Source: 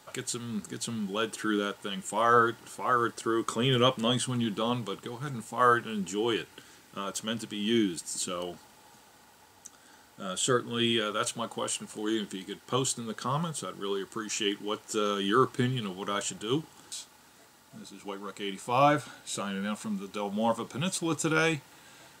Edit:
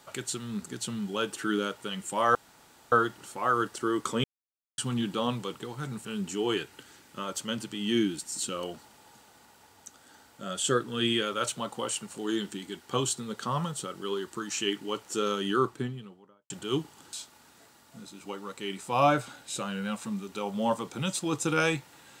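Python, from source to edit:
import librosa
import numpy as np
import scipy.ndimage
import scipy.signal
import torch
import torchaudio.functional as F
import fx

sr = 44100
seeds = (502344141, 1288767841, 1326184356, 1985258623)

y = fx.studio_fade_out(x, sr, start_s=15.06, length_s=1.23)
y = fx.edit(y, sr, fx.insert_room_tone(at_s=2.35, length_s=0.57),
    fx.silence(start_s=3.67, length_s=0.54),
    fx.cut(start_s=5.48, length_s=0.36), tone=tone)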